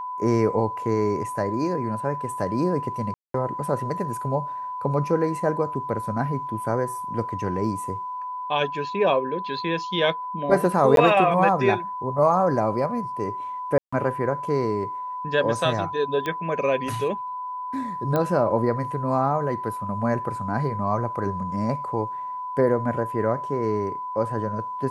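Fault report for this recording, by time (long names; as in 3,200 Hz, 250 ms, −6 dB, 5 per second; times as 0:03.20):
whistle 1,000 Hz −29 dBFS
0:03.14–0:03.34: drop-out 203 ms
0:10.96–0:10.97: drop-out 12 ms
0:13.78–0:13.93: drop-out 145 ms
0:16.26: click −15 dBFS
0:18.16: click −12 dBFS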